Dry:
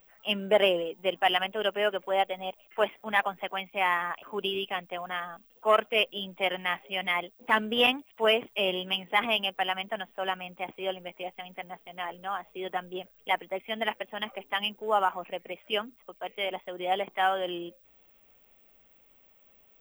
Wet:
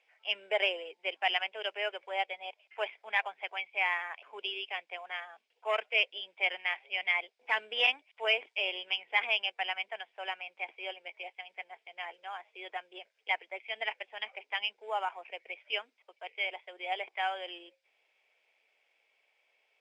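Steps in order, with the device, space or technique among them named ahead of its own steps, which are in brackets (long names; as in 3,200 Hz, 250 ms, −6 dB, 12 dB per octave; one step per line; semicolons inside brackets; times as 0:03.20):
phone speaker on a table (loudspeaker in its box 480–7,600 Hz, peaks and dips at 550 Hz −4 dB, 1,200 Hz −8 dB, 2,300 Hz +10 dB, 5,000 Hz +9 dB)
level −6 dB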